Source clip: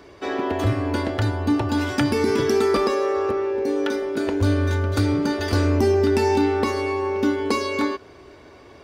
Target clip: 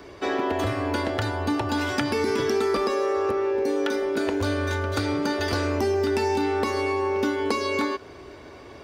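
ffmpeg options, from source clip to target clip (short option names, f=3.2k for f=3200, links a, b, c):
-filter_complex "[0:a]acrossover=split=410|6200[a][b][c];[a]acompressor=threshold=-32dB:ratio=4[d];[b]acompressor=threshold=-27dB:ratio=4[e];[c]acompressor=threshold=-49dB:ratio=4[f];[d][e][f]amix=inputs=3:normalize=0,volume=2.5dB"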